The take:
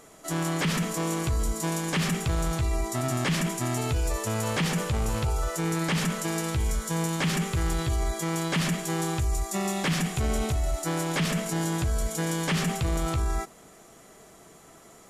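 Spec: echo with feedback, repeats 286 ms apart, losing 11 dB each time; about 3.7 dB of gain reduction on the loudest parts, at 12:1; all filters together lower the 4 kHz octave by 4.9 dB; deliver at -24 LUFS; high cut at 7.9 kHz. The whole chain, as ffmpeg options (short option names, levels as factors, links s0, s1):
-af "lowpass=7900,equalizer=f=4000:t=o:g=-6.5,acompressor=threshold=0.0501:ratio=12,aecho=1:1:286|572|858:0.282|0.0789|0.0221,volume=2.24"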